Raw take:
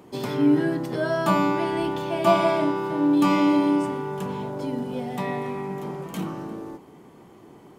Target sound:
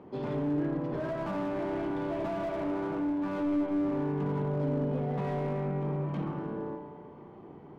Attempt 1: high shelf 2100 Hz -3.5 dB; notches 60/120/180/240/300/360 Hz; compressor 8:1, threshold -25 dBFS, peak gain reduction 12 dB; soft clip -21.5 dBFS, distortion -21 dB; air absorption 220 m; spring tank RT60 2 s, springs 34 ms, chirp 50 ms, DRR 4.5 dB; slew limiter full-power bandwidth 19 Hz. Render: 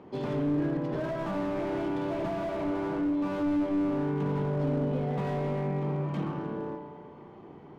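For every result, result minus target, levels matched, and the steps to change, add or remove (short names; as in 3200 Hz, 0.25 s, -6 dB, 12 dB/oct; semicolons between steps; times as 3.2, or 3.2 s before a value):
soft clip: distortion -8 dB; 4000 Hz band +2.5 dB
change: soft clip -28 dBFS, distortion -13 dB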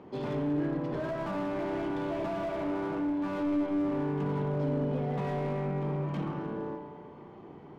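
4000 Hz band +3.0 dB
change: high shelf 2100 Hz -11 dB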